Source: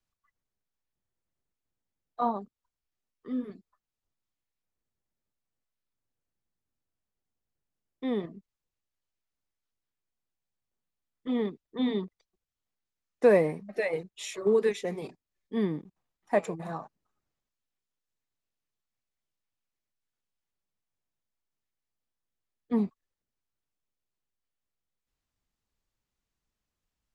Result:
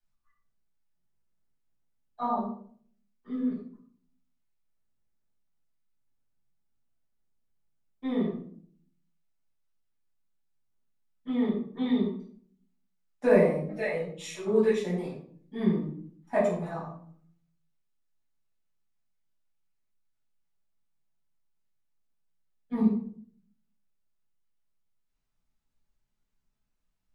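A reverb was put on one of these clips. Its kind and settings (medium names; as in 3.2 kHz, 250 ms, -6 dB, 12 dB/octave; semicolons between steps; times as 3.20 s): simulated room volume 670 m³, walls furnished, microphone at 8.2 m; trim -10.5 dB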